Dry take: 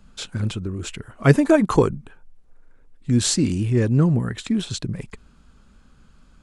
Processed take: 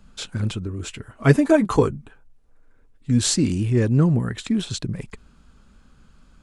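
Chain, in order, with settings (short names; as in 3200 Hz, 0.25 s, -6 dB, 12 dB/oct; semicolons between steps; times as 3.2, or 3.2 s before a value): 0.65–3.23 notch comb 180 Hz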